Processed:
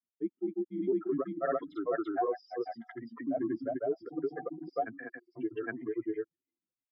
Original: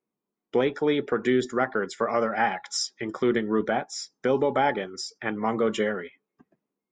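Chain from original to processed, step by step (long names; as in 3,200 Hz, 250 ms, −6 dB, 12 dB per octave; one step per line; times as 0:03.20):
expanding power law on the bin magnitudes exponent 2.5
single-sideband voice off tune −97 Hz 360–3,200 Hz
granular cloud, spray 431 ms, pitch spread up and down by 0 semitones
level −5 dB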